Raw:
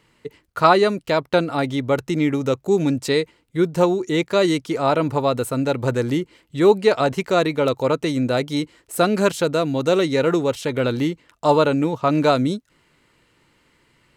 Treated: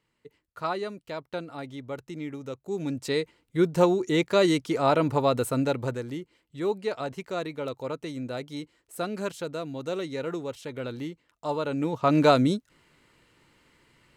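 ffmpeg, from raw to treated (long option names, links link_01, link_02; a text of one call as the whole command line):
ffmpeg -i in.wav -af "volume=8dB,afade=type=in:start_time=2.63:duration=1.01:silence=0.237137,afade=type=out:start_time=5.59:duration=0.44:silence=0.316228,afade=type=in:start_time=11.63:duration=0.56:silence=0.266073" out.wav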